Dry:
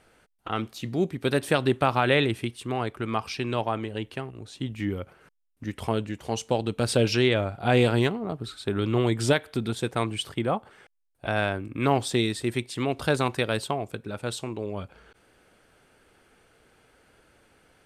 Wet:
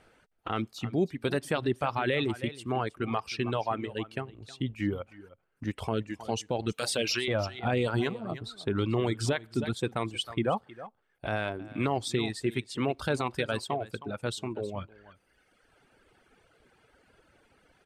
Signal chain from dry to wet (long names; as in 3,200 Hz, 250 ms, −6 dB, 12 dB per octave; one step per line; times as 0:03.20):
0:06.72–0:07.28: spectral tilt +3.5 dB per octave
on a send: single-tap delay 315 ms −12.5 dB
on the sum: reverb reduction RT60 1.4 s
brickwall limiter −17 dBFS, peak gain reduction 9.5 dB
high-shelf EQ 7,900 Hz −9.5 dB